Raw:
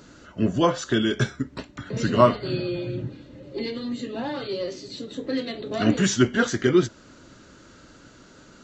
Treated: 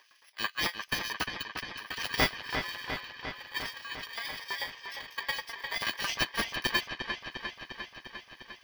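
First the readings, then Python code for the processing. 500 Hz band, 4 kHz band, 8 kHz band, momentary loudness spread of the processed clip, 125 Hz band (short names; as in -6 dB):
-18.5 dB, +0.5 dB, -8.0 dB, 13 LU, -18.5 dB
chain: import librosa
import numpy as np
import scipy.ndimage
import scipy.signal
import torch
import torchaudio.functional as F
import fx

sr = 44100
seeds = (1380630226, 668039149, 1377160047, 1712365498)

p1 = fx.bit_reversed(x, sr, seeds[0], block=32)
p2 = fx.highpass(p1, sr, hz=690.0, slope=6)
p3 = fx.high_shelf(p2, sr, hz=3300.0, db=9.5)
p4 = fx.notch(p3, sr, hz=5400.0, q=27.0)
p5 = fx.rider(p4, sr, range_db=3, speed_s=2.0)
p6 = p4 + F.gain(torch.from_numpy(p5), -1.0).numpy()
p7 = fx.transient(p6, sr, attack_db=10, sustain_db=-9)
p8 = fx.filter_lfo_highpass(p7, sr, shape='saw_up', hz=9.1, low_hz=980.0, high_hz=3900.0, q=0.96)
p9 = 10.0 ** (0.0 / 20.0) * np.tanh(p8 / 10.0 ** (0.0 / 20.0))
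p10 = fx.air_absorb(p9, sr, metres=270.0)
p11 = p10 + fx.echo_wet_lowpass(p10, sr, ms=351, feedback_pct=71, hz=3800.0, wet_db=-6.5, dry=0)
y = F.gain(torch.from_numpy(p11), -5.5).numpy()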